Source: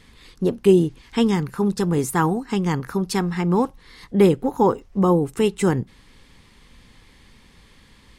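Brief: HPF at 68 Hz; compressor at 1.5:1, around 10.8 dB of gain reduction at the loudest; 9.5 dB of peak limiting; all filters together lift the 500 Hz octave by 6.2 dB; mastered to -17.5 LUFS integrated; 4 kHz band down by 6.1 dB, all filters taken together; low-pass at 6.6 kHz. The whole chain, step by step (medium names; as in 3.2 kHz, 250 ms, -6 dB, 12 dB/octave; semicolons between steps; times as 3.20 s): high-pass 68 Hz; low-pass 6.6 kHz; peaking EQ 500 Hz +8.5 dB; peaking EQ 4 kHz -8.5 dB; compression 1.5:1, threshold -36 dBFS; trim +11.5 dB; peak limiter -7.5 dBFS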